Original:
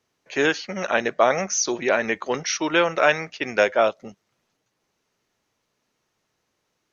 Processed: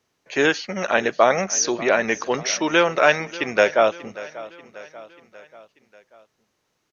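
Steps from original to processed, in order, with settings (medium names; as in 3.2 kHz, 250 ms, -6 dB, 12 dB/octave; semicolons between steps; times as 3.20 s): feedback delay 588 ms, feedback 53%, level -18 dB; trim +2 dB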